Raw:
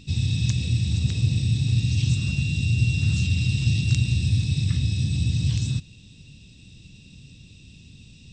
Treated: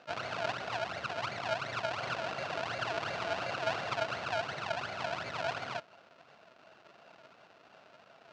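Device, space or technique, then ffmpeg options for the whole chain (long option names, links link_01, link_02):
circuit-bent sampling toy: -af "acrusher=samples=39:mix=1:aa=0.000001:lfo=1:lforange=39:lforate=2.8,highpass=440,equalizer=frequency=670:width_type=q:width=4:gain=9,equalizer=frequency=1400:width_type=q:width=4:gain=9,equalizer=frequency=2700:width_type=q:width=4:gain=7,equalizer=frequency=4300:width_type=q:width=4:gain=3,lowpass=frequency=5700:width=0.5412,lowpass=frequency=5700:width=1.3066,volume=-6.5dB"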